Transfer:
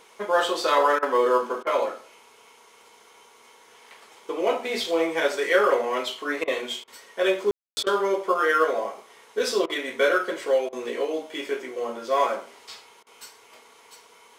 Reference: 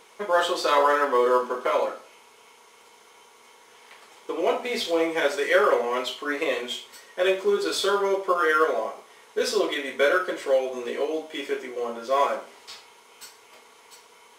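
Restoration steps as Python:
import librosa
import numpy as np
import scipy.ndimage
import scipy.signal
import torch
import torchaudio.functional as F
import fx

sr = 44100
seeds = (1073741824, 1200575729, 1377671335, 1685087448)

y = fx.fix_ambience(x, sr, seeds[0], print_start_s=2.55, print_end_s=3.05, start_s=7.51, end_s=7.77)
y = fx.fix_interpolate(y, sr, at_s=(0.99, 1.63, 6.44, 6.84, 7.83, 9.66, 10.69, 13.03), length_ms=35.0)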